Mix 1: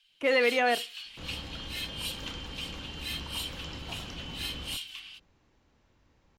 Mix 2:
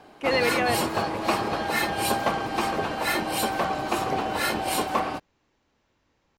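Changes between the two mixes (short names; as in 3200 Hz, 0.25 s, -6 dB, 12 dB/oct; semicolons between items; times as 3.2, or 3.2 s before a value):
first sound: remove ladder high-pass 2800 Hz, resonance 70%; second sound: add low shelf 160 Hz -10 dB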